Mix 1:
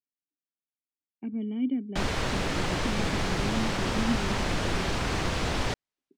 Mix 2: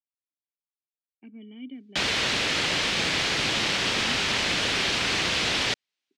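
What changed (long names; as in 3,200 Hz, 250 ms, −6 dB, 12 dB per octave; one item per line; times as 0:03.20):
speech −10.5 dB
master: add meter weighting curve D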